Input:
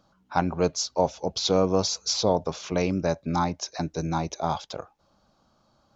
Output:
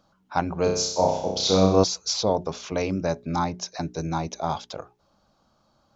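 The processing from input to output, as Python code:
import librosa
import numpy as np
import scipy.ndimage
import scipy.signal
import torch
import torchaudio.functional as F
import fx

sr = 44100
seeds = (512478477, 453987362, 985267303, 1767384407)

y = fx.hum_notches(x, sr, base_hz=60, count=7)
y = fx.room_flutter(y, sr, wall_m=5.4, rt60_s=0.69, at=(0.63, 1.84))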